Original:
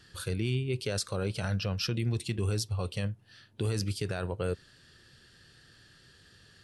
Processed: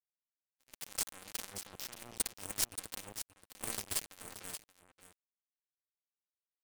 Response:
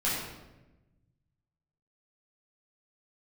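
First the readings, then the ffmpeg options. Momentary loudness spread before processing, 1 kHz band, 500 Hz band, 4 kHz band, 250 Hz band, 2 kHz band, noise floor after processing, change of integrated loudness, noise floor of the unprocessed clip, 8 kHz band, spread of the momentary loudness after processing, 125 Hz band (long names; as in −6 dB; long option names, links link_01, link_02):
5 LU, −7.0 dB, −19.0 dB, −6.5 dB, −19.5 dB, −8.5 dB, below −85 dBFS, −7.0 dB, −60 dBFS, +3.5 dB, 12 LU, −28.0 dB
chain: -af "highshelf=frequency=11000:gain=10.5,aecho=1:1:3.8:0.94,areverse,acompressor=threshold=-39dB:ratio=8,areverse,alimiter=level_in=14dB:limit=-24dB:level=0:latency=1:release=10,volume=-14dB,dynaudnorm=framelen=350:gausssize=3:maxgain=11dB,aexciter=amount=3.1:drive=3.3:freq=6200,acrusher=bits=3:mix=0:aa=0.5,aecho=1:1:578:0.251,asoftclip=type=tanh:threshold=-25dB,aeval=exprs='0.0562*(cos(1*acos(clip(val(0)/0.0562,-1,1)))-cos(1*PI/2))+0.0126*(cos(2*acos(clip(val(0)/0.0562,-1,1)))-cos(2*PI/2))':channel_layout=same,volume=8dB"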